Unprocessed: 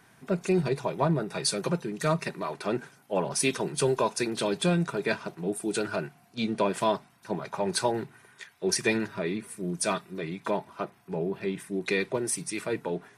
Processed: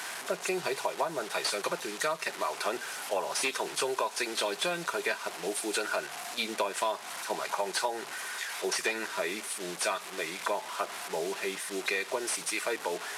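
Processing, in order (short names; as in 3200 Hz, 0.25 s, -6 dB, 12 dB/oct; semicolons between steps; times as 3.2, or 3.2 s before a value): delta modulation 64 kbps, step -37 dBFS; HPF 620 Hz 12 dB/oct; compressor, threshold -33 dBFS, peak gain reduction 10.5 dB; gain +6 dB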